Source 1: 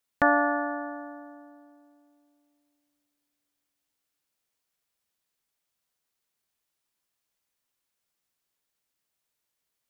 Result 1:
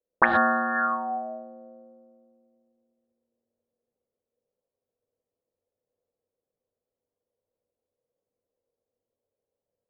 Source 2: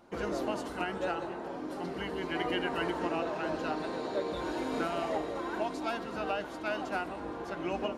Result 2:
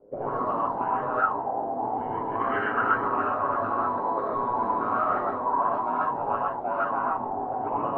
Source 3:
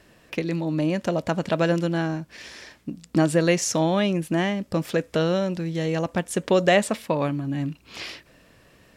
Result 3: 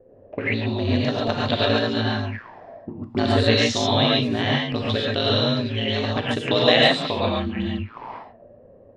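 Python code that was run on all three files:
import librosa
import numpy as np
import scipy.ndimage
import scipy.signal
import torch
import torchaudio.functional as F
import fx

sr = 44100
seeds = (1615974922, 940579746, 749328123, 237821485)

y = x * np.sin(2.0 * np.pi * 57.0 * np.arange(len(x)) / sr)
y = fx.rev_gated(y, sr, seeds[0], gate_ms=160, shape='rising', drr_db=-4.0)
y = fx.envelope_lowpass(y, sr, base_hz=500.0, top_hz=3800.0, q=7.8, full_db=-20.0, direction='up')
y = y * 10.0 ** (-1.0 / 20.0)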